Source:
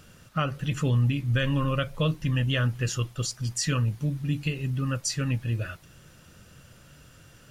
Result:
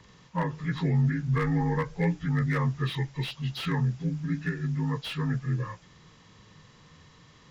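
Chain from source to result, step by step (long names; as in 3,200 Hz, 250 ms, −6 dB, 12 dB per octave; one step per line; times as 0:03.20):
partials spread apart or drawn together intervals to 82%
slew-rate limiting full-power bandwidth 66 Hz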